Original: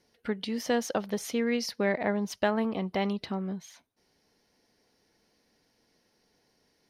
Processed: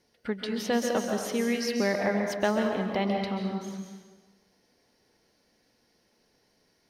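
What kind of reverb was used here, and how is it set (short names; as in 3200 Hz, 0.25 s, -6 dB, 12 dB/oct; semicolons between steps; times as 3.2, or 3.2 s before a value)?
plate-style reverb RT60 1.3 s, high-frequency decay 0.8×, pre-delay 0.12 s, DRR 2 dB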